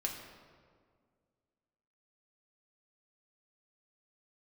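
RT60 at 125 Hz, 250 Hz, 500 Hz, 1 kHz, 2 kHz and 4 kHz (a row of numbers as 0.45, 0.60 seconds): 2.3, 2.3, 2.1, 1.8, 1.4, 1.1 seconds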